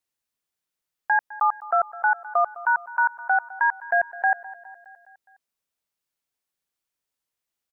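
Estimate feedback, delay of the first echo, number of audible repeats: 58%, 207 ms, 4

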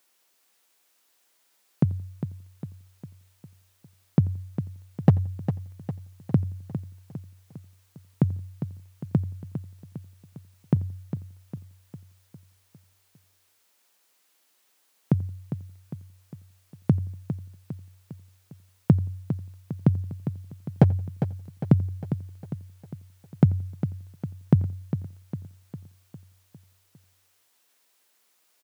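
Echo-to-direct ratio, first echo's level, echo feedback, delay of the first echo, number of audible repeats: -8.5 dB, -23.0 dB, no regular repeats, 87 ms, 8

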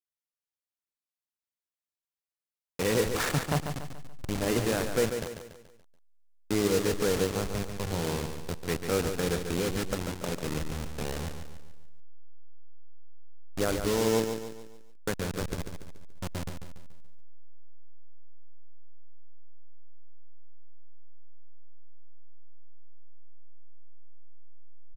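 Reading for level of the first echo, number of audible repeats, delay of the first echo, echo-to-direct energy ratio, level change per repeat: -7.5 dB, 4, 143 ms, -6.5 dB, -7.0 dB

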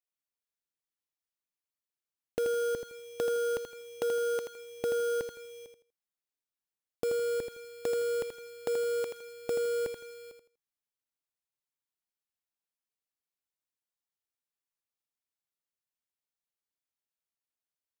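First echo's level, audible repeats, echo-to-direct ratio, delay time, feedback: -7.5 dB, 3, -7.0 dB, 81 ms, 24%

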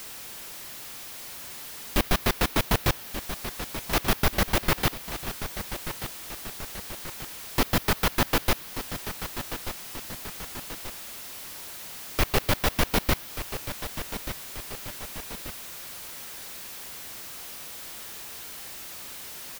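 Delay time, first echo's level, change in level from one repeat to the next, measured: 1184 ms, -11.0 dB, -5.5 dB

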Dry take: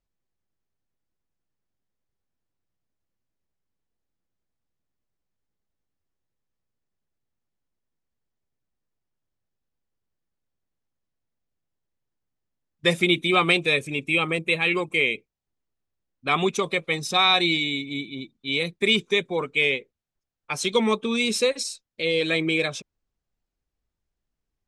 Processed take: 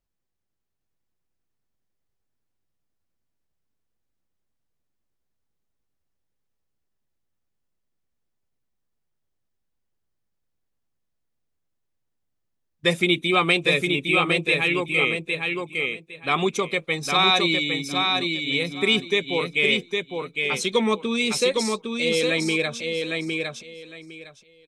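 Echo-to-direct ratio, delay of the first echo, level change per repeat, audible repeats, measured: -4.0 dB, 808 ms, -14.0 dB, 3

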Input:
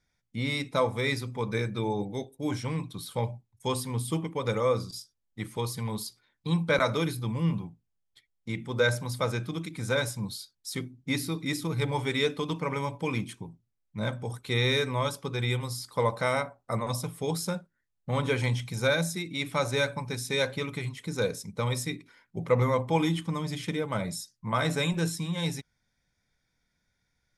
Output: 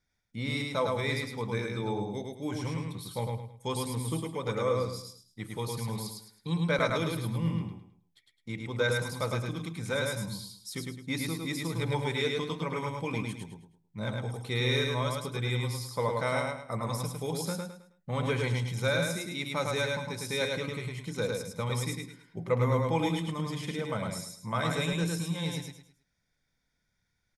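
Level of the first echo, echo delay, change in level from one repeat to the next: -3.0 dB, 106 ms, -10.0 dB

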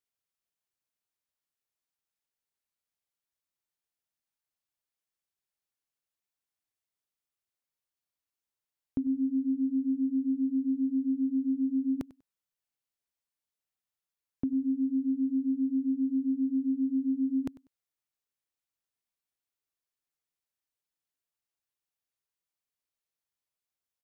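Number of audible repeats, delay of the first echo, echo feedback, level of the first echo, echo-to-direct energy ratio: 2, 97 ms, 21%, -20.0 dB, -20.0 dB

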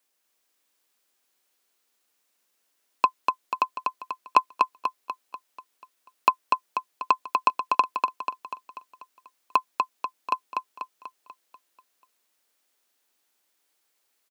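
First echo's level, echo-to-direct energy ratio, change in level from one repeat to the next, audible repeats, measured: -3.5 dB, -2.0 dB, -6.0 dB, 6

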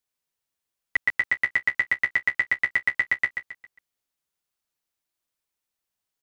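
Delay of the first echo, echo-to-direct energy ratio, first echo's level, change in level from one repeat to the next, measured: 135 ms, -7.0 dB, -7.5 dB, -9.0 dB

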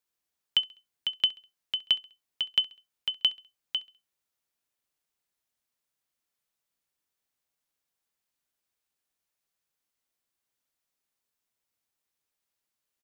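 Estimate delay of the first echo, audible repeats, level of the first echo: 67 ms, 2, -21.0 dB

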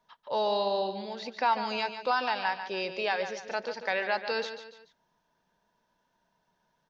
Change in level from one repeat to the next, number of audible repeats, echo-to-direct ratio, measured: -7.5 dB, 3, -9.0 dB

